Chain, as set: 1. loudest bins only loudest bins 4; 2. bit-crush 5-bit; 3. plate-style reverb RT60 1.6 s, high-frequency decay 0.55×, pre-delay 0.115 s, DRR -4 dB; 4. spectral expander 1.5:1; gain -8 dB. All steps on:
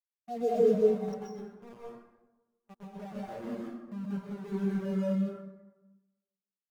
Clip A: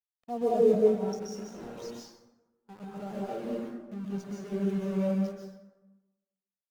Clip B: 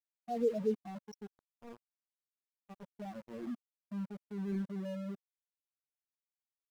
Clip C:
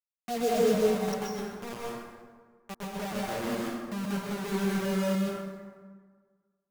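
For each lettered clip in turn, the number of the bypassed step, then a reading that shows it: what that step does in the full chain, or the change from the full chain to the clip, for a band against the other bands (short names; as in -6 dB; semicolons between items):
1, loudness change +1.5 LU; 3, 500 Hz band -2.5 dB; 4, 2 kHz band +11.5 dB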